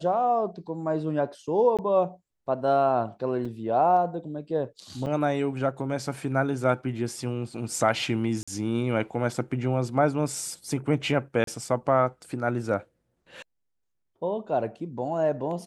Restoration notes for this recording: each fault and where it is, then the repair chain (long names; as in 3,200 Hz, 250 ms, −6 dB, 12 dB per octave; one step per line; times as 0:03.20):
0:01.77–0:01.79: drop-out 17 ms
0:03.45: drop-out 4.1 ms
0:05.06–0:05.07: drop-out 5.4 ms
0:08.43–0:08.47: drop-out 45 ms
0:11.44–0:11.47: drop-out 33 ms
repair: repair the gap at 0:01.77, 17 ms
repair the gap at 0:03.45, 4.1 ms
repair the gap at 0:05.06, 5.4 ms
repair the gap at 0:08.43, 45 ms
repair the gap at 0:11.44, 33 ms